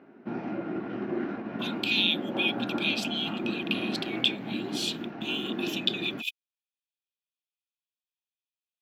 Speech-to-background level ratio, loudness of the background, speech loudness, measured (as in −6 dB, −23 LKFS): 4.0 dB, −34.0 LKFS, −30.0 LKFS